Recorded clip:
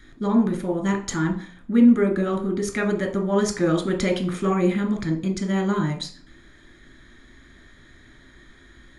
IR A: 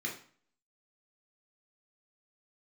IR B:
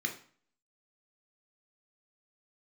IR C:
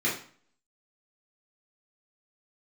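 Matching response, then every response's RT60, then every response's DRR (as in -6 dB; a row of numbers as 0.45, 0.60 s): B; 0.45, 0.45, 0.45 s; -2.0, 2.5, -7.5 dB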